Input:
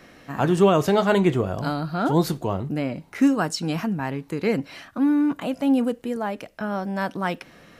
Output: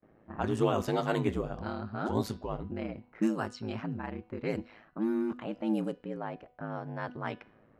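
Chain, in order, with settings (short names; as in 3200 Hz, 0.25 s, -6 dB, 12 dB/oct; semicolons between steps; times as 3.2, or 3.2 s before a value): ring modulator 54 Hz; low-pass opened by the level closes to 830 Hz, open at -18 dBFS; gate with hold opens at -46 dBFS; de-hum 247 Hz, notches 22; gain -7.5 dB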